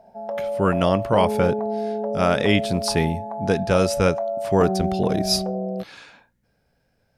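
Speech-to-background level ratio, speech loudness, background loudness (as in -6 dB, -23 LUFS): 5.0 dB, -22.0 LUFS, -27.0 LUFS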